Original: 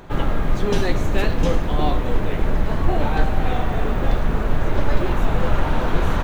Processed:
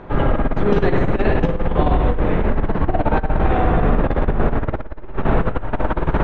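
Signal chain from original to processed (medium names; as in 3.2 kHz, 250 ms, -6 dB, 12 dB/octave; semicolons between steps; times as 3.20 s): low-pass 2.4 kHz 12 dB/octave; spring tank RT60 1.2 s, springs 59 ms, chirp 40 ms, DRR 1.5 dB; compressor with a negative ratio -15 dBFS, ratio -0.5; peaking EQ 480 Hz +3 dB 2.9 oct; trim -1 dB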